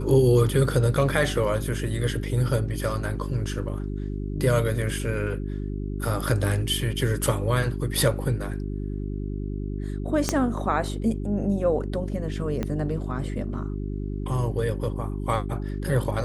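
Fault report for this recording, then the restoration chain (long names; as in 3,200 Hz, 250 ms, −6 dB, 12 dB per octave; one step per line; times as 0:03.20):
mains hum 50 Hz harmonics 8 −30 dBFS
0:10.29: click −8 dBFS
0:12.63: click −15 dBFS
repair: click removal
hum removal 50 Hz, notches 8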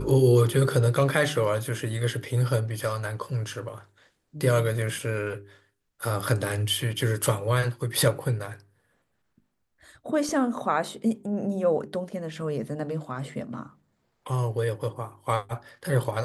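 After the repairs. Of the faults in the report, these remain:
0:10.29: click
0:12.63: click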